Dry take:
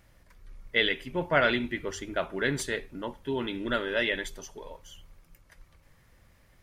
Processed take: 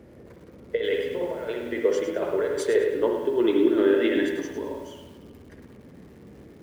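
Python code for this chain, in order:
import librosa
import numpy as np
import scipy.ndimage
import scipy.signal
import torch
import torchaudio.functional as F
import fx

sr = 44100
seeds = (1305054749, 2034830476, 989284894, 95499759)

y = fx.tilt_eq(x, sr, slope=-2.0)
y = fx.hum_notches(y, sr, base_hz=50, count=7)
y = fx.over_compress(y, sr, threshold_db=-30.0, ratio=-0.5)
y = fx.filter_sweep_highpass(y, sr, from_hz=460.0, to_hz=200.0, start_s=2.39, end_s=6.09, q=5.6)
y = fx.dmg_noise_band(y, sr, seeds[0], low_hz=50.0, high_hz=440.0, level_db=-50.0)
y = fx.rev_spring(y, sr, rt60_s=1.2, pass_ms=(58,), chirp_ms=70, drr_db=3.0)
y = fx.echo_crushed(y, sr, ms=104, feedback_pct=35, bits=8, wet_db=-8.5)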